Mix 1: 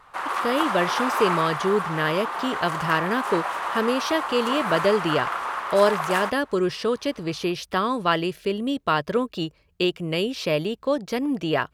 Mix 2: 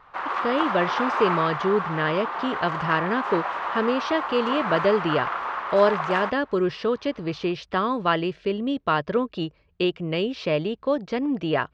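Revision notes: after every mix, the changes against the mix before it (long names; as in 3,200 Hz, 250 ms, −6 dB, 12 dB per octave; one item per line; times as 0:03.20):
master: add Gaussian smoothing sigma 1.9 samples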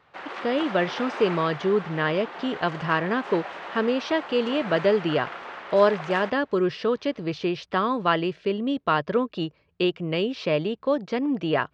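speech: add high-pass filter 96 Hz 12 dB per octave
background: add parametric band 1,100 Hz −13.5 dB 1 octave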